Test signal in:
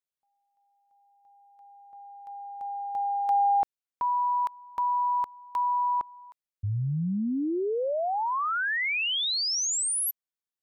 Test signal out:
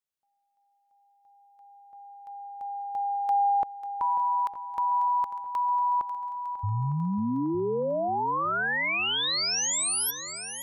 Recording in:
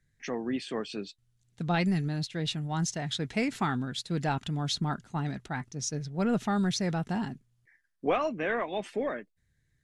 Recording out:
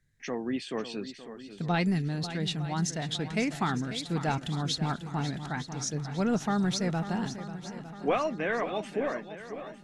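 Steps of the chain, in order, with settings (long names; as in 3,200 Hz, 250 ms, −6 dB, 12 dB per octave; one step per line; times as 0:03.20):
feedback echo with a long and a short gap by turns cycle 906 ms, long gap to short 1.5 to 1, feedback 48%, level −12 dB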